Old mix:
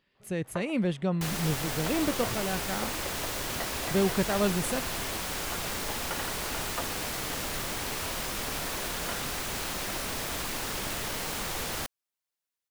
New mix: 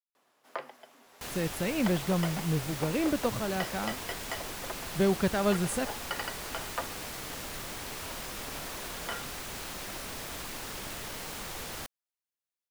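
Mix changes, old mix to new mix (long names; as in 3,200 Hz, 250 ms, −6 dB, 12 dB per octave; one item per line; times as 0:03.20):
speech: entry +1.05 s
first sound: remove high-frequency loss of the air 360 metres
second sound −6.0 dB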